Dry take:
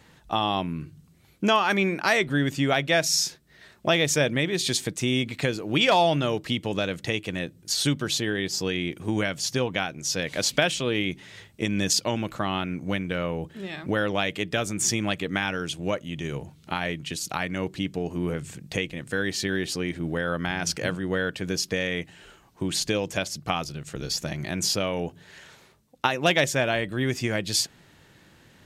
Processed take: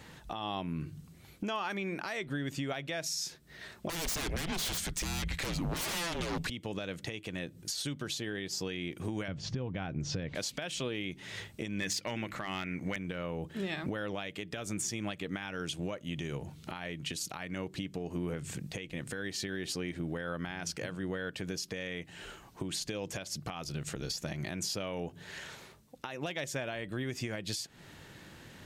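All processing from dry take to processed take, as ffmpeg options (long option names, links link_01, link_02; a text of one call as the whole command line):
ffmpeg -i in.wav -filter_complex "[0:a]asettb=1/sr,asplit=3[link_01][link_02][link_03];[link_01]atrim=end=3.894[link_04];[link_02]atrim=start=3.89:end=6.5,asetpts=PTS-STARTPTS,afade=type=in:duration=0.004:curve=qsin,afade=type=out:start_time=2.606:duration=0.004:curve=qsin,adynamicequalizer=threshold=0.02:dfrequency=1300:dqfactor=1.2:tfrequency=1300:tqfactor=1.2:attack=5:release=100:ratio=0.375:range=2.5:mode=cutabove:tftype=bell,aeval=exprs='0.355*sin(PI/2*7.94*val(0)/0.355)':channel_layout=same,afreqshift=-170[link_05];[link_03]atrim=start=6.496[link_06];[link_04][link_05]acrossfade=duration=0.004:curve1=hsin:curve2=qsin[link_07];[link_07][link_06]acrossfade=duration=0.004:curve1=qsin:curve2=hsin,asettb=1/sr,asplit=3[link_08][link_09][link_10];[link_08]atrim=end=9.284[link_11];[link_09]atrim=start=9.28:end=10.35,asetpts=PTS-STARTPTS,afade=type=in:duration=0.004:curve=qsin,afade=type=out:start_time=1.066:duration=0.004:curve=qsin,lowpass=5800,aemphasis=mode=reproduction:type=riaa[link_12];[link_10]atrim=start=10.346[link_13];[link_11][link_12]acrossfade=duration=0.004:curve1=hsin:curve2=qsin[link_14];[link_14][link_13]acrossfade=duration=0.004:curve1=qsin:curve2=hsin,asettb=1/sr,asplit=3[link_15][link_16][link_17];[link_15]atrim=end=11.804[link_18];[link_16]atrim=start=11.8:end=12.96,asetpts=PTS-STARTPTS,afade=type=in:duration=0.004:curve=qsin,afade=type=out:start_time=1.156:duration=0.004:curve=qsin,equalizer=frequency=2000:width=2.3:gain=12.5,bandreject=frequency=50:width_type=h:width=6,bandreject=frequency=100:width_type=h:width=6,bandreject=frequency=150:width_type=h:width=6,bandreject=frequency=200:width_type=h:width=6,bandreject=frequency=250:width_type=h:width=6,bandreject=frequency=300:width_type=h:width=6,bandreject=frequency=350:width_type=h:width=6,volume=15dB,asoftclip=hard,volume=-15dB[link_19];[link_17]atrim=start=12.956[link_20];[link_18][link_19]acrossfade=duration=0.004:curve1=hsin:curve2=qsin[link_21];[link_21][link_20]acrossfade=duration=0.004:curve1=qsin:curve2=hsin,acompressor=threshold=-34dB:ratio=6,alimiter=level_in=4.5dB:limit=-24dB:level=0:latency=1:release=195,volume=-4.5dB,volume=3dB" out.wav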